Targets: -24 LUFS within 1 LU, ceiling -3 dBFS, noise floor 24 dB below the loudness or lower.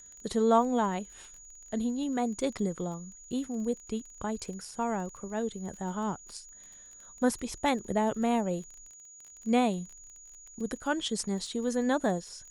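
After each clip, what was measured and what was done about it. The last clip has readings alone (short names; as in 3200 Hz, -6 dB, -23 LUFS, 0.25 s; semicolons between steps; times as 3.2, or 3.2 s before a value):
ticks 22/s; steady tone 6800 Hz; tone level -49 dBFS; loudness -31.5 LUFS; peak -13.0 dBFS; loudness target -24.0 LUFS
-> de-click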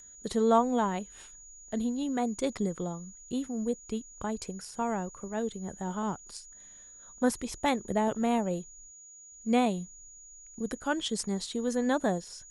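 ticks 0.080/s; steady tone 6800 Hz; tone level -49 dBFS
-> notch 6800 Hz, Q 30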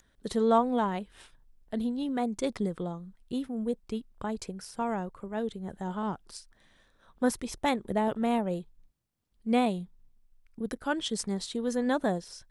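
steady tone none; loudness -31.5 LUFS; peak -13.0 dBFS; loudness target -24.0 LUFS
-> gain +7.5 dB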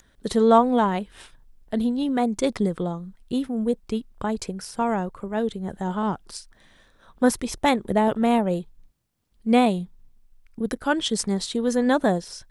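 loudness -24.0 LUFS; peak -5.5 dBFS; noise floor -60 dBFS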